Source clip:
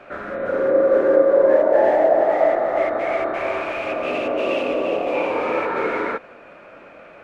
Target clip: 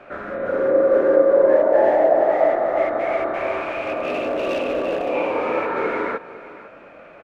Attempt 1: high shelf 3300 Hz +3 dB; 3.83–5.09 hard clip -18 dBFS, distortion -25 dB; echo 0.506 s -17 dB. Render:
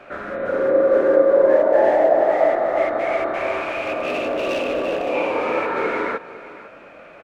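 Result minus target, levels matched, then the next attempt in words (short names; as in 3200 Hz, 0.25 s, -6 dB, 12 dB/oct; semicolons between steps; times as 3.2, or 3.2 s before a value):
8000 Hz band +5.0 dB
high shelf 3300 Hz -5 dB; 3.83–5.09 hard clip -18 dBFS, distortion -26 dB; echo 0.506 s -17 dB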